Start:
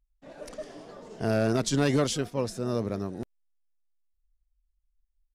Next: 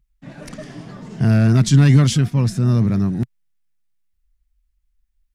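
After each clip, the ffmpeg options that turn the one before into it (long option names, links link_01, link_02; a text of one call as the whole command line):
ffmpeg -i in.wav -filter_complex "[0:a]equalizer=frequency=160:width=0.72:gain=10.5,asplit=2[link_01][link_02];[link_02]alimiter=limit=-18.5dB:level=0:latency=1:release=15,volume=1dB[link_03];[link_01][link_03]amix=inputs=2:normalize=0,equalizer=frequency=125:width_type=o:width=1:gain=7,equalizer=frequency=500:width_type=o:width=1:gain=-10,equalizer=frequency=2000:width_type=o:width=1:gain=5" out.wav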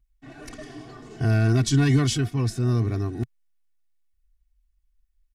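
ffmpeg -i in.wav -af "aecho=1:1:2.7:0.97,volume=-6.5dB" out.wav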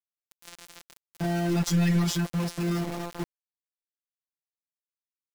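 ffmpeg -i in.wav -af "afftfilt=real='hypot(re,im)*cos(PI*b)':imag='0':win_size=1024:overlap=0.75,aeval=exprs='(tanh(7.94*val(0)+0.4)-tanh(0.4))/7.94':channel_layout=same,aeval=exprs='val(0)*gte(abs(val(0)),0.0188)':channel_layout=same,volume=4dB" out.wav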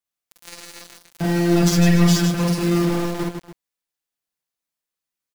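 ffmpeg -i in.wav -af "aecho=1:1:46|50|56|73|154|288:0.531|0.562|0.398|0.266|0.501|0.188,volume=6dB" out.wav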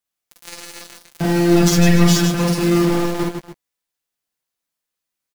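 ffmpeg -i in.wav -filter_complex "[0:a]asplit=2[link_01][link_02];[link_02]adelay=14,volume=-11.5dB[link_03];[link_01][link_03]amix=inputs=2:normalize=0,volume=3.5dB" out.wav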